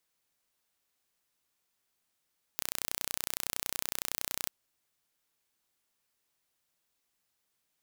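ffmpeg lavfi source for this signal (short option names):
-f lavfi -i "aevalsrc='0.531*eq(mod(n,1432),0)':d=1.91:s=44100"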